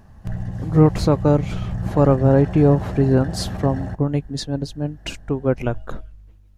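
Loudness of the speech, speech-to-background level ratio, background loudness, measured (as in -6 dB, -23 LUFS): -19.5 LUFS, 9.5 dB, -29.0 LUFS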